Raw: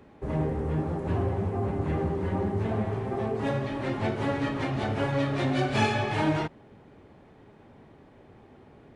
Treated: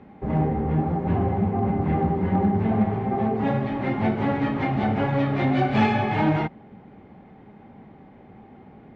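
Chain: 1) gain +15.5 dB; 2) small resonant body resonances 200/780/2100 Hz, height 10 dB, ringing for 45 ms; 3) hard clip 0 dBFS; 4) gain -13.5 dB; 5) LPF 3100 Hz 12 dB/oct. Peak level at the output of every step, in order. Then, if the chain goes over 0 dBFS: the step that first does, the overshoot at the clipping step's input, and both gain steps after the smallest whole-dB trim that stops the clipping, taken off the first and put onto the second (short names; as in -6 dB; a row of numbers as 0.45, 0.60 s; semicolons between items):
+2.5, +7.5, 0.0, -13.5, -13.0 dBFS; step 1, 7.5 dB; step 1 +7.5 dB, step 4 -5.5 dB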